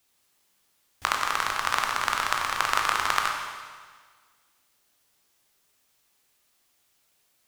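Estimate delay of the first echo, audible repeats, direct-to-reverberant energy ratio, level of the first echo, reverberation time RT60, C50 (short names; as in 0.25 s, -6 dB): none, none, 1.0 dB, none, 1.6 s, 3.5 dB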